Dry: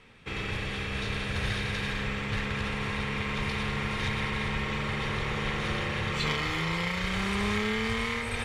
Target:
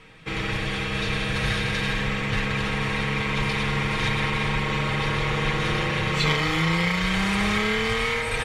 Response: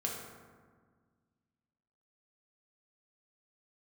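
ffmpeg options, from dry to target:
-af "aecho=1:1:6.3:0.62,volume=1.78"

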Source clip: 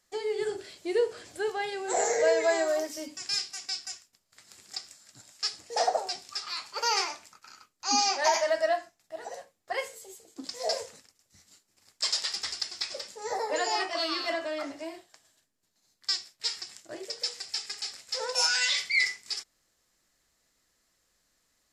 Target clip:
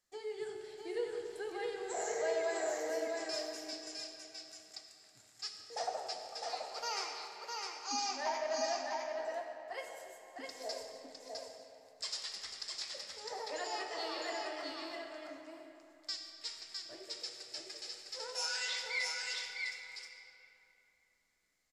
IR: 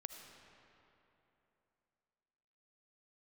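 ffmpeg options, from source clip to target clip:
-filter_complex "[0:a]asettb=1/sr,asplit=3[s0][s1][s2];[s0]atrim=end=8.234[s3];[s1]atrim=start=8.23:end=9.25,asetpts=PTS-STARTPTS,afade=t=in:d=0.004:c=qsin,afade=t=out:st=1.016:d=0.004:c=qsin,equalizer=f=8600:t=o:w=1.5:g=-10.5[s4];[s2]atrim=start=9.246[s5];[s3][s4]acrossfade=d=0.004:c1=hsin:c2=qsin[s6];[s6][s5]acrossfade=d=0.004:c1=qsin:c2=hsin,aecho=1:1:657:0.668[s7];[1:a]atrim=start_sample=2205[s8];[s7][s8]afir=irnorm=-1:irlink=0,volume=0.447"

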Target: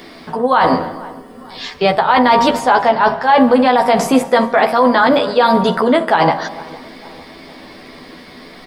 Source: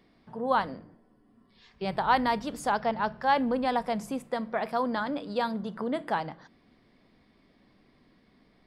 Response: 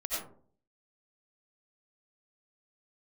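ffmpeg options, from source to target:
-filter_complex "[0:a]acrossover=split=3900[s0][s1];[s1]acompressor=threshold=0.00126:ratio=4:attack=1:release=60[s2];[s0][s2]amix=inputs=2:normalize=0,bass=f=250:g=-10,treble=f=4000:g=4,bandreject=f=58.24:t=h:w=4,bandreject=f=116.48:t=h:w=4,bandreject=f=174.72:t=h:w=4,bandreject=f=232.96:t=h:w=4,bandreject=f=291.2:t=h:w=4,bandreject=f=349.44:t=h:w=4,bandreject=f=407.68:t=h:w=4,bandreject=f=465.92:t=h:w=4,bandreject=f=524.16:t=h:w=4,bandreject=f=582.4:t=h:w=4,bandreject=f=640.64:t=h:w=4,bandreject=f=698.88:t=h:w=4,bandreject=f=757.12:t=h:w=4,bandreject=f=815.36:t=h:w=4,bandreject=f=873.6:t=h:w=4,bandreject=f=931.84:t=h:w=4,bandreject=f=990.08:t=h:w=4,bandreject=f=1048.32:t=h:w=4,bandreject=f=1106.56:t=h:w=4,bandreject=f=1164.8:t=h:w=4,bandreject=f=1223.04:t=h:w=4,areverse,acompressor=threshold=0.0178:ratio=10,areverse,asplit=2[s3][s4];[s4]adelay=12,volume=0.631[s5];[s3][s5]amix=inputs=2:normalize=0,asplit=2[s6][s7];[s7]adelay=453,lowpass=f=1800:p=1,volume=0.075,asplit=2[s8][s9];[s9]adelay=453,lowpass=f=1800:p=1,volume=0.53,asplit=2[s10][s11];[s11]adelay=453,lowpass=f=1800:p=1,volume=0.53,asplit=2[s12][s13];[s13]adelay=453,lowpass=f=1800:p=1,volume=0.53[s14];[s6][s8][s10][s12][s14]amix=inputs=5:normalize=0,asplit=2[s15][s16];[1:a]atrim=start_sample=2205,adelay=144[s17];[s16][s17]afir=irnorm=-1:irlink=0,volume=0.0631[s18];[s15][s18]amix=inputs=2:normalize=0,alimiter=level_in=26.6:limit=0.891:release=50:level=0:latency=1,volume=0.891"

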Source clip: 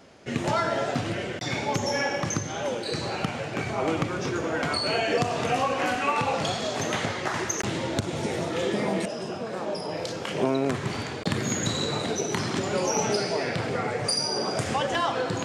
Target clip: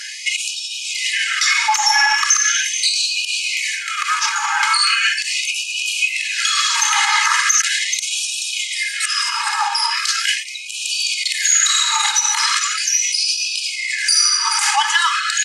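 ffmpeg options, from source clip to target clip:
-filter_complex "[0:a]bandreject=f=3500:w=13,aecho=1:1:430:0.211,acrossover=split=210[s0][s1];[s1]acompressor=threshold=0.0141:ratio=6[s2];[s0][s2]amix=inputs=2:normalize=0,equalizer=f=82:w=0.74:g=-7.5,aecho=1:1:2.4:0.9,areverse,acompressor=mode=upward:threshold=0.002:ratio=2.5,areverse,lowpass=f=11000:w=0.5412,lowpass=f=11000:w=1.3066,highshelf=f=7300:g=9.5,alimiter=level_in=23.7:limit=0.891:release=50:level=0:latency=1,afftfilt=real='re*gte(b*sr/1024,790*pow(2400/790,0.5+0.5*sin(2*PI*0.39*pts/sr)))':imag='im*gte(b*sr/1024,790*pow(2400/790,0.5+0.5*sin(2*PI*0.39*pts/sr)))':win_size=1024:overlap=0.75,volume=0.794"

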